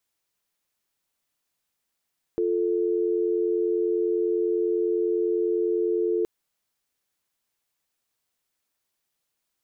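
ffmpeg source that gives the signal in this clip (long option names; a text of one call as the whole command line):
ffmpeg -f lavfi -i "aevalsrc='0.0631*(sin(2*PI*350*t)+sin(2*PI*440*t))':duration=3.87:sample_rate=44100" out.wav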